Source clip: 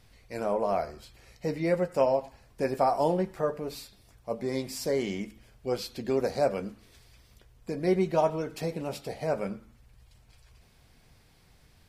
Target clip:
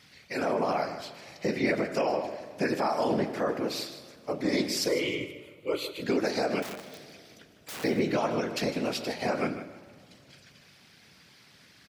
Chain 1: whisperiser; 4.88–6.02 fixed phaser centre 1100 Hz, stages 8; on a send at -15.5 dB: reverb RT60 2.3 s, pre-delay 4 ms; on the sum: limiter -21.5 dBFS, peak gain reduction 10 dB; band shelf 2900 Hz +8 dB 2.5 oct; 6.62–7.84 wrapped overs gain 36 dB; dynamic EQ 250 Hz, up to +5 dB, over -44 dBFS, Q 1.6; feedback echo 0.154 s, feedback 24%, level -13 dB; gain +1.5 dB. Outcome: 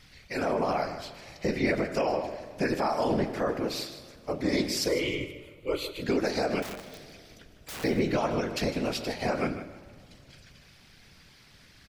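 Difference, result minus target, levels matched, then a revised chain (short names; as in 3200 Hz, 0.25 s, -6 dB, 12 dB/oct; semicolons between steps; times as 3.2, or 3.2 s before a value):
125 Hz band +3.0 dB
whisperiser; 4.88–6.02 fixed phaser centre 1100 Hz, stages 8; on a send at -15.5 dB: reverb RT60 2.3 s, pre-delay 4 ms; on the sum: limiter -21.5 dBFS, peak gain reduction 10 dB; band shelf 2900 Hz +8 dB 2.5 oct; 6.62–7.84 wrapped overs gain 36 dB; dynamic EQ 250 Hz, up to +5 dB, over -44 dBFS, Q 1.6; HPF 140 Hz 12 dB/oct; feedback echo 0.154 s, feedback 24%, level -13 dB; gain +1.5 dB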